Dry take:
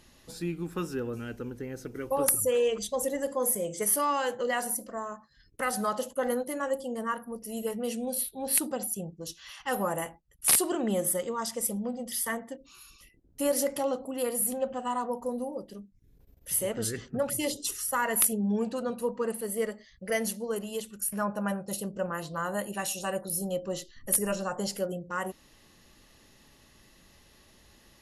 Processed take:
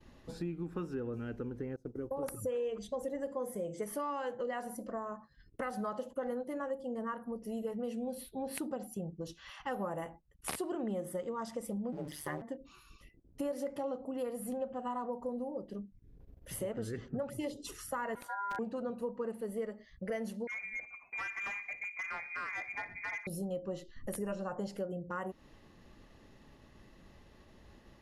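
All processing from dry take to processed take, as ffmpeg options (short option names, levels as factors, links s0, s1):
-filter_complex "[0:a]asettb=1/sr,asplit=3[s0][s1][s2];[s0]atrim=end=1.764[s3];[s1]atrim=start=1.76:end=2.23,asetpts=PTS-STARTPTS,afade=t=in:d=0.004:c=qsin,afade=t=out:st=0.466:d=0.004:c=qsin,equalizer=f=2200:t=o:w=1.6:g=-14.5,acompressor=threshold=0.0224:ratio=1.5:attack=3.2:release=140:knee=1:detection=peak,agate=range=0.0224:threshold=0.0126:ratio=3:release=100:detection=peak[s4];[s2]atrim=start=2.226[s5];[s3][s4]acrossfade=d=0.004:c1=hsin:c2=qsin[s6];[s6][s5]acrossfade=d=0.004:c1=qsin:c2=hsin,asettb=1/sr,asplit=3[s7][s8][s9];[s7]atrim=end=11.924[s10];[s8]atrim=start=11.92:end=12.42,asetpts=PTS-STARTPTS,afade=t=in:d=0.004:c=qsin,afade=t=out:st=0.496:d=0.004:c=qsin,aeval=exprs='val(0)+0.5*0.00944*sgn(val(0))':c=same,bandreject=f=7200:w=25,aeval=exprs='val(0)*sin(2*PI*73*n/s)':c=same[s11];[s9]atrim=start=12.416[s12];[s10][s11]acrossfade=d=0.004:c1=hsin:c2=qsin[s13];[s13][s12]acrossfade=d=0.004:c1=qsin:c2=hsin,asettb=1/sr,asplit=3[s14][s15][s16];[s14]atrim=end=18.154[s17];[s15]atrim=start=18.15:end=18.59,asetpts=PTS-STARTPTS,afade=t=in:d=0.004:c=qsin,afade=t=out:st=0.436:d=0.004:c=qsin,equalizer=f=12000:w=0.53:g=-12.5,aeval=exprs='val(0)*sin(2*PI*1200*n/s)':c=same,aeval=exprs='(mod(11.9*val(0)+1,2)-1)/11.9':c=same[s18];[s16]atrim=start=18.586[s19];[s17][s18]acrossfade=d=0.004:c1=hsin:c2=qsin[s20];[s20][s19]acrossfade=d=0.004:c1=qsin:c2=hsin,asettb=1/sr,asplit=3[s21][s22][s23];[s21]atrim=end=20.474[s24];[s22]atrim=start=20.47:end=23.27,asetpts=PTS-STARTPTS,afade=t=in:d=0.004:c=qsin,afade=t=out:st=2.796:d=0.004:c=qsin,lowpass=f=2200:t=q:w=0.5098,lowpass=f=2200:t=q:w=0.6013,lowpass=f=2200:t=q:w=0.9,lowpass=f=2200:t=q:w=2.563,afreqshift=-2600,asoftclip=type=hard:threshold=0.0316,aecho=1:1:61|122|183|244|305:0.0891|0.0535|0.0321|0.0193|0.0116,atrim=end_sample=123480[s25];[s23]atrim=start=23.266[s26];[s24][s25]acrossfade=d=0.004:c1=hsin:c2=qsin[s27];[s27][s26]acrossfade=d=0.004:c1=qsin:c2=hsin,lowpass=f=1100:p=1,agate=range=0.0224:threshold=0.00112:ratio=3:detection=peak,acompressor=threshold=0.00891:ratio=3,volume=1.5"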